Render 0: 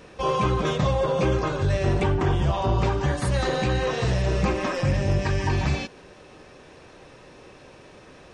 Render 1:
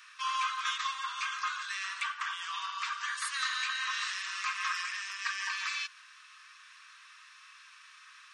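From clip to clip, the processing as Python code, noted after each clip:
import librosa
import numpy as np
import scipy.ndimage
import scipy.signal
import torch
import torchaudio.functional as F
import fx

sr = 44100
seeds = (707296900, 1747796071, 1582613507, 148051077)

y = scipy.signal.sosfilt(scipy.signal.cheby1(6, 1.0, 1100.0, 'highpass', fs=sr, output='sos'), x)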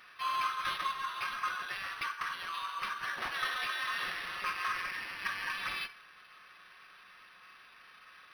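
y = fx.room_shoebox(x, sr, seeds[0], volume_m3=2000.0, walls='furnished', distance_m=1.0)
y = np.interp(np.arange(len(y)), np.arange(len(y))[::6], y[::6])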